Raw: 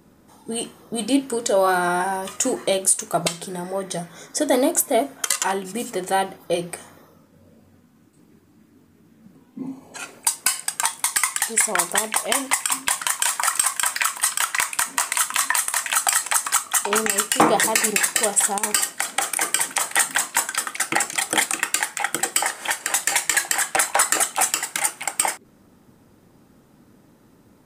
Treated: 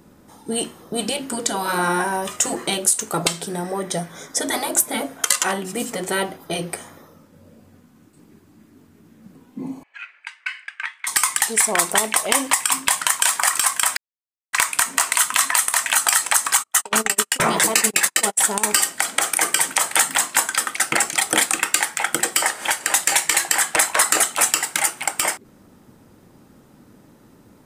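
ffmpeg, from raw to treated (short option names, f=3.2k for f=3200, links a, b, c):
-filter_complex "[0:a]asettb=1/sr,asplit=3[a][b][c];[a]atrim=end=9.834[d];[b]atrim=start=9.83:end=11.07,asetpts=PTS-STARTPTS,afade=t=in:d=0.004:c=qsin,afade=t=out:st=1.236:d=0.004:c=qsin,asuperpass=centerf=2000:order=4:qfactor=1.8[e];[c]atrim=start=11.066[f];[d][e]acrossfade=d=0.004:c1=hsin:c2=qsin[g];[g][f]acrossfade=d=0.004:c1=qsin:c2=hsin,asplit=3[h][i][j];[h]afade=t=out:st=16.62:d=0.02[k];[i]agate=range=-39dB:threshold=-23dB:ratio=16:release=100:detection=peak,afade=t=in:st=16.62:d=0.02,afade=t=out:st=18.47:d=0.02[l];[j]afade=t=in:st=18.47:d=0.02[m];[k][l][m]amix=inputs=3:normalize=0,asplit=3[n][o][p];[n]atrim=end=13.97,asetpts=PTS-STARTPTS,afade=t=out:st=13.966:d=0.004:c=hsin[q];[o]atrim=start=13.97:end=14.53,asetpts=PTS-STARTPTS,volume=0[r];[p]atrim=start=14.53,asetpts=PTS-STARTPTS,afade=t=in:d=0.004:c=hsin[s];[q][r][s]concat=n=3:v=0:a=1,afftfilt=real='re*lt(hypot(re,im),0.501)':imag='im*lt(hypot(re,im),0.501)':win_size=1024:overlap=0.75,volume=3.5dB"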